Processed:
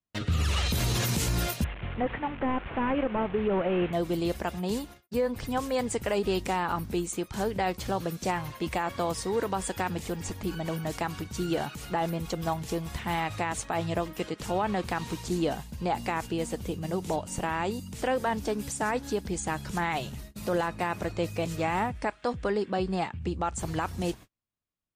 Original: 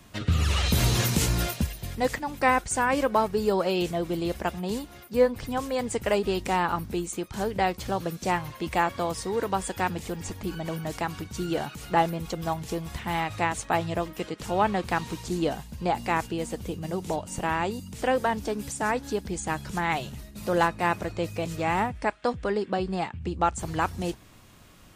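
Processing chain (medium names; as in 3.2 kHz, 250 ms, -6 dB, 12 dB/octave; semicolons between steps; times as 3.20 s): 1.64–3.93 s: one-bit delta coder 16 kbps, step -34.5 dBFS; gate -43 dBFS, range -41 dB; peak limiter -18.5 dBFS, peak gain reduction 10.5 dB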